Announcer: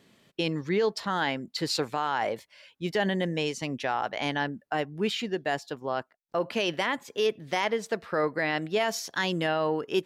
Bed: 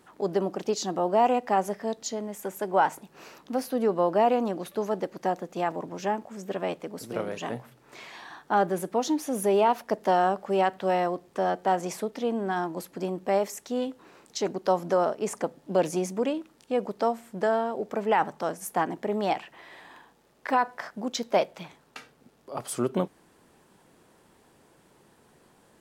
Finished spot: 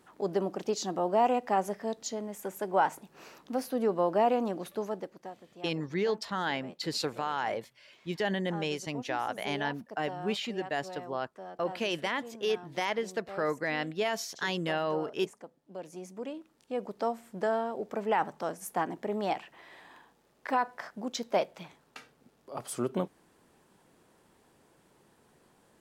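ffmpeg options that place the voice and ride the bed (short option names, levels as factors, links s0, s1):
-filter_complex "[0:a]adelay=5250,volume=0.631[s0];[1:a]volume=3.35,afade=t=out:st=4.68:d=0.64:silence=0.177828,afade=t=in:st=15.84:d=1.41:silence=0.199526[s1];[s0][s1]amix=inputs=2:normalize=0"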